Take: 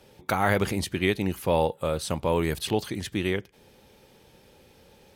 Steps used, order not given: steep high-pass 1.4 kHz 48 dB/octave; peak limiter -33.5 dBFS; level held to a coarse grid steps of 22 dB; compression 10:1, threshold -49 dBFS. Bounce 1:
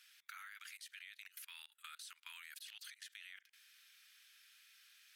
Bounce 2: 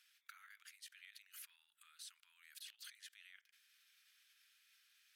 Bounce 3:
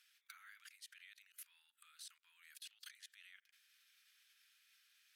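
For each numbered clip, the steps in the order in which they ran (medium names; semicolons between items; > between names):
steep high-pass > level held to a coarse grid > peak limiter > compression; level held to a coarse grid > peak limiter > compression > steep high-pass; peak limiter > level held to a coarse grid > compression > steep high-pass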